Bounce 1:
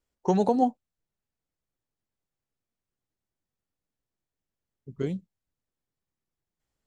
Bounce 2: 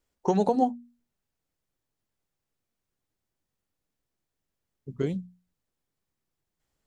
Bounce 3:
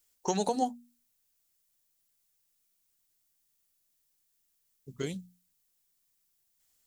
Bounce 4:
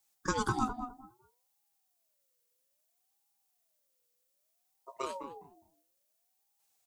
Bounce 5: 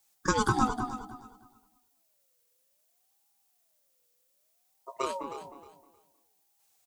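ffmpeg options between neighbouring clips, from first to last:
ffmpeg -i in.wav -filter_complex "[0:a]bandreject=frequency=60:width_type=h:width=6,bandreject=frequency=120:width_type=h:width=6,bandreject=frequency=180:width_type=h:width=6,bandreject=frequency=240:width_type=h:width=6,asplit=2[link_01][link_02];[link_02]acompressor=threshold=-30dB:ratio=6,volume=3dB[link_03];[link_01][link_03]amix=inputs=2:normalize=0,volume=-3.5dB" out.wav
ffmpeg -i in.wav -af "crystalizer=i=9.5:c=0,volume=-8dB" out.wav
ffmpeg -i in.wav -filter_complex "[0:a]asplit=2[link_01][link_02];[link_02]adelay=206,lowpass=frequency=880:poles=1,volume=-6.5dB,asplit=2[link_03][link_04];[link_04]adelay=206,lowpass=frequency=880:poles=1,volume=0.21,asplit=2[link_05][link_06];[link_06]adelay=206,lowpass=frequency=880:poles=1,volume=0.21[link_07];[link_01][link_03][link_05][link_07]amix=inputs=4:normalize=0,aeval=exprs='val(0)*sin(2*PI*650*n/s+650*0.25/0.61*sin(2*PI*0.61*n/s))':channel_layout=same" out.wav
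ffmpeg -i in.wav -af "aecho=1:1:312|624|936:0.237|0.0522|0.0115,volume=5.5dB" out.wav

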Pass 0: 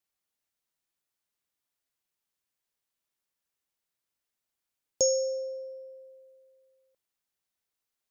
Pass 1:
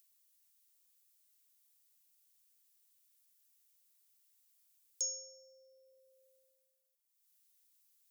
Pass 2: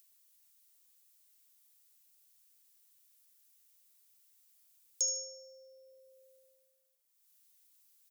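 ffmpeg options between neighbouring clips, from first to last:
ffmpeg -i in.wav -af "agate=range=-33dB:threshold=-56dB:ratio=3:detection=peak,acompressor=mode=upward:threshold=-29dB:ratio=2.5,aderivative,volume=-7.5dB" out.wav
ffmpeg -i in.wav -af "aecho=1:1:76|152|228:0.251|0.0829|0.0274,volume=4.5dB" out.wav

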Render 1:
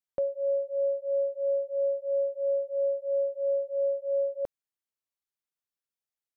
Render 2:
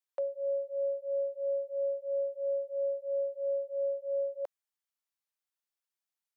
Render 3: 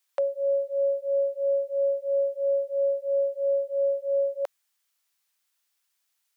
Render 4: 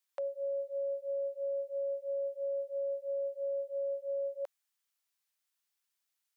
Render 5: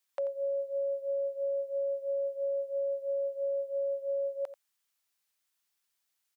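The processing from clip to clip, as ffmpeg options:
ffmpeg -i in.wav -af "highpass=frequency=600:width=0.5412,highpass=frequency=600:width=1.3066" out.wav
ffmpeg -i in.wav -af "tiltshelf=frequency=660:gain=-7.5,volume=8.5dB" out.wav
ffmpeg -i in.wav -af "alimiter=limit=-22.5dB:level=0:latency=1:release=14,volume=-8.5dB" out.wav
ffmpeg -i in.wav -af "aecho=1:1:87:0.2,volume=3.5dB" out.wav

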